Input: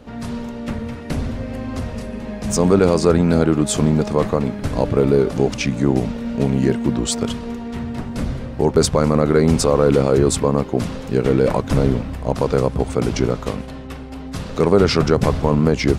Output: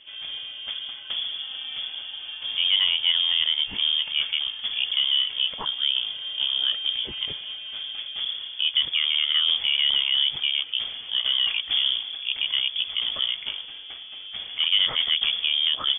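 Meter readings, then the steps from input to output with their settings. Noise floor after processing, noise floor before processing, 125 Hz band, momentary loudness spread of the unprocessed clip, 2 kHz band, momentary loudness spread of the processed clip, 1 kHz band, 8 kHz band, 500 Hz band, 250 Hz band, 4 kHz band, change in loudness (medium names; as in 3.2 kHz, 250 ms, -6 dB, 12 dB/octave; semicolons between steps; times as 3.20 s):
-40 dBFS, -32 dBFS, under -35 dB, 13 LU, 0.0 dB, 13 LU, -18.0 dB, under -40 dB, under -35 dB, under -35 dB, +14.0 dB, -4.0 dB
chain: frequency inversion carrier 3.4 kHz; trim -8 dB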